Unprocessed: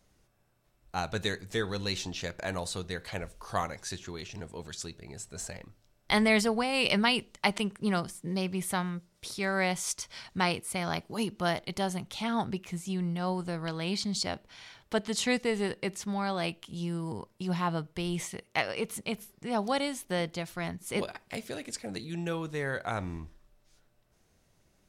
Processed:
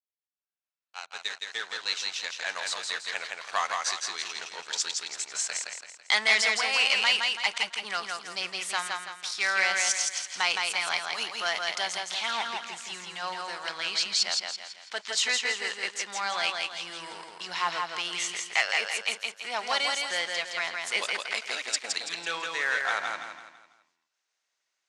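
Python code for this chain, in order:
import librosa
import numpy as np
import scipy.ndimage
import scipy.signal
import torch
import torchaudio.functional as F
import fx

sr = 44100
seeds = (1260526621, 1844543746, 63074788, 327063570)

y = fx.fade_in_head(x, sr, length_s=4.88)
y = fx.leveller(y, sr, passes=3)
y = scipy.signal.sosfilt(scipy.signal.butter(4, 7600.0, 'lowpass', fs=sr, output='sos'), y)
y = fx.rider(y, sr, range_db=4, speed_s=2.0)
y = scipy.signal.sosfilt(scipy.signal.butter(2, 1300.0, 'highpass', fs=sr, output='sos'), y)
y = fx.echo_feedback(y, sr, ms=166, feedback_pct=41, wet_db=-3.5)
y = y * librosa.db_to_amplitude(-2.5)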